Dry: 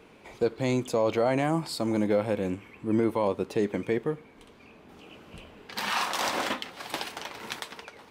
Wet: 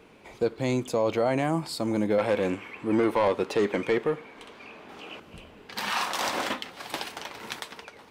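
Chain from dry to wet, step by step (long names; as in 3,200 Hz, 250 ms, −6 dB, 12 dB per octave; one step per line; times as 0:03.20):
0:02.18–0:05.20: mid-hump overdrive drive 16 dB, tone 3,900 Hz, clips at −14 dBFS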